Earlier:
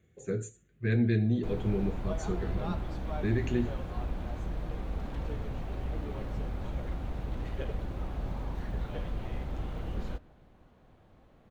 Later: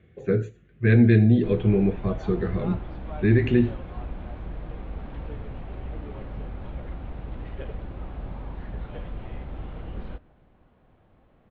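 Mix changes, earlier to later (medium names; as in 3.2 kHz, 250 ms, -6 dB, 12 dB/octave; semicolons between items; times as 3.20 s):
speech +10.0 dB; master: add low-pass 3.4 kHz 24 dB/octave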